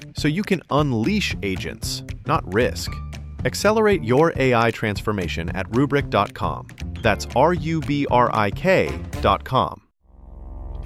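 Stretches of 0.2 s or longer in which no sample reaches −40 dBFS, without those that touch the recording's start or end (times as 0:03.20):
0:09.78–0:10.14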